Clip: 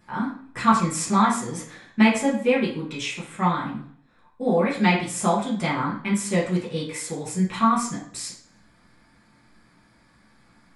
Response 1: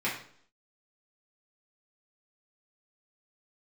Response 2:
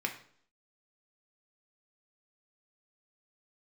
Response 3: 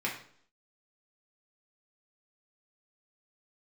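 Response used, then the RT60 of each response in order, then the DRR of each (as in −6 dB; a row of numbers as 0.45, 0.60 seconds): 1; 0.60, 0.60, 0.60 seconds; −8.0, 2.5, −4.0 decibels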